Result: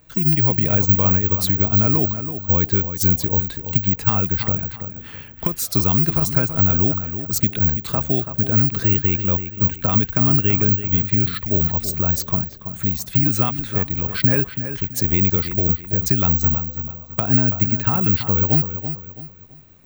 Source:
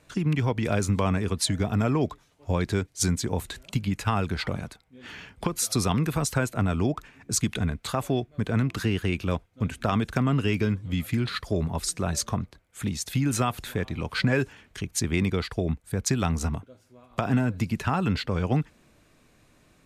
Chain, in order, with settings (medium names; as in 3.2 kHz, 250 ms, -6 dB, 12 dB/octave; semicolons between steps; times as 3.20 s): bass shelf 170 Hz +9 dB; feedback echo behind a low-pass 331 ms, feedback 34%, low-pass 3.3 kHz, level -10 dB; careless resampling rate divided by 2×, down filtered, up zero stuff